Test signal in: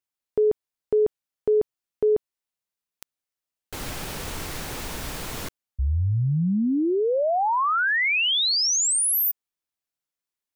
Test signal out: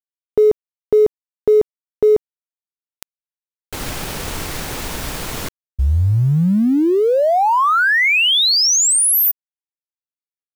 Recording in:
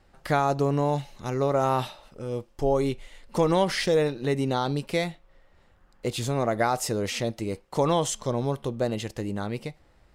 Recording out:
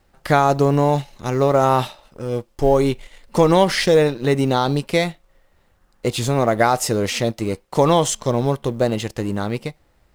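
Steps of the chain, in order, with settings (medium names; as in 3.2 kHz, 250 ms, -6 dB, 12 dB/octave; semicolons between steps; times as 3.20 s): companding laws mixed up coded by A; trim +8.5 dB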